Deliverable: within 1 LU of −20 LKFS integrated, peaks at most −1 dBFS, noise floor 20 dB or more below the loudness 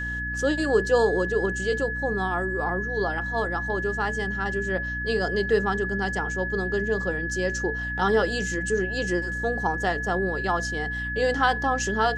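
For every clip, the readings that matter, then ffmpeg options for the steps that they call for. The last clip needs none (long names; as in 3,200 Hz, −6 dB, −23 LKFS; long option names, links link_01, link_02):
mains hum 60 Hz; hum harmonics up to 300 Hz; level of the hum −32 dBFS; interfering tone 1,700 Hz; level of the tone −29 dBFS; integrated loudness −25.5 LKFS; sample peak −8.0 dBFS; target loudness −20.0 LKFS
→ -af "bandreject=frequency=60:width_type=h:width=6,bandreject=frequency=120:width_type=h:width=6,bandreject=frequency=180:width_type=h:width=6,bandreject=frequency=240:width_type=h:width=6,bandreject=frequency=300:width_type=h:width=6"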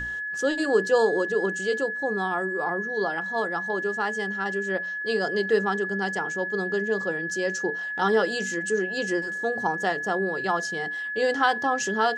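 mains hum none found; interfering tone 1,700 Hz; level of the tone −29 dBFS
→ -af "bandreject=frequency=1700:width=30"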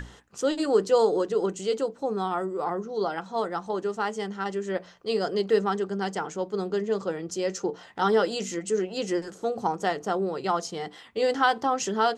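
interfering tone none found; integrated loudness −27.5 LKFS; sample peak −9.0 dBFS; target loudness −20.0 LKFS
→ -af "volume=7.5dB"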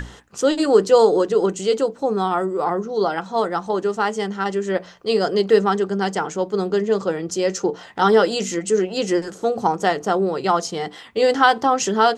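integrated loudness −20.0 LKFS; sample peak −1.5 dBFS; background noise floor −43 dBFS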